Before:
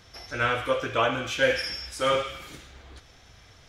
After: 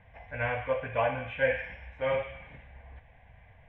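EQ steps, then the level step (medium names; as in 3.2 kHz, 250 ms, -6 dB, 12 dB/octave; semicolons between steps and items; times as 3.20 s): low-pass 2.2 kHz 24 dB/octave; static phaser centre 1.3 kHz, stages 6; 0.0 dB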